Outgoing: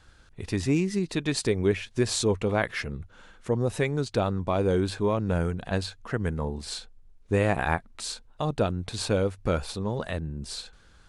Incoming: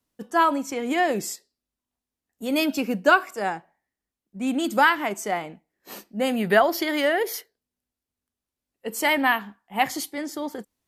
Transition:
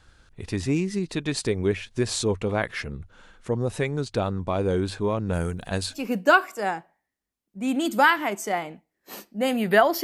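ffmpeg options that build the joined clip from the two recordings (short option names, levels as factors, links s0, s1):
-filter_complex "[0:a]asettb=1/sr,asplit=3[s0][s1][s2];[s0]atrim=end=5.334[s3];[s1]atrim=start=5.33:end=6.1,asetpts=PTS-STARTPTS,afade=t=in:d=0.004:c=qsin,afade=t=out:st=0.766:d=0.004:c=qsin,aemphasis=mode=production:type=50fm[s4];[s2]atrim=start=6.096[s5];[s3][s4]acrossfade=d=0.004:c1=hsin:c2=qsin[s6];[s6][s5]acrossfade=d=0.004:c1=qsin:c2=hsin,apad=whole_dur=10.03,atrim=end=10.03,atrim=end=6.1,asetpts=PTS-STARTPTS[s7];[1:a]atrim=start=2.69:end=6.82,asetpts=PTS-STARTPTS[s8];[s7][s8]acrossfade=d=0.2:c1=tri:c2=tri"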